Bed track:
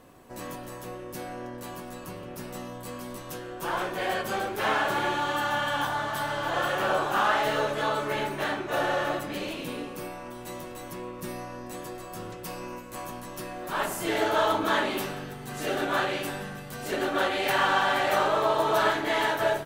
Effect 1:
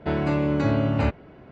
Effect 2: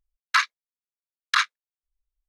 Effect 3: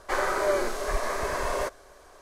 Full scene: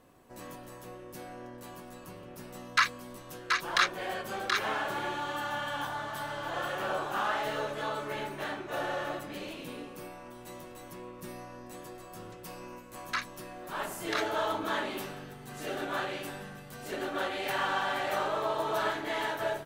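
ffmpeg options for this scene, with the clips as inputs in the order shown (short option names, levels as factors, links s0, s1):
-filter_complex "[2:a]asplit=2[s0][s1];[0:a]volume=0.447[s2];[s0]aecho=1:1:729:0.631,atrim=end=2.28,asetpts=PTS-STARTPTS,volume=0.596,afade=t=in:d=0.004:c=hsin,afade=t=out:st=2.276:d=0.004:c=hsin,adelay=2430[s3];[s1]atrim=end=2.28,asetpts=PTS-STARTPTS,volume=0.224,afade=t=in:d=0.004:c=hsin,afade=t=out:st=2.276:d=0.004:c=hsin,adelay=12790[s4];[s2][s3][s4]amix=inputs=3:normalize=0"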